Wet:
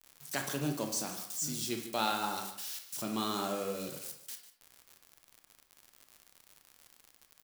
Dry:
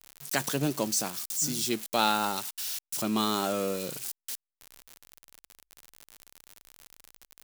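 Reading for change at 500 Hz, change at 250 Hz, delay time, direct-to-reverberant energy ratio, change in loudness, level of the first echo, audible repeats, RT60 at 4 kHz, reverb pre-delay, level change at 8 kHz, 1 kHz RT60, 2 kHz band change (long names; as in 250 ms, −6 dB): −6.0 dB, −6.0 dB, 148 ms, 3.5 dB, −6.5 dB, −13.5 dB, 1, 0.45 s, 25 ms, −6.5 dB, 0.65 s, −6.0 dB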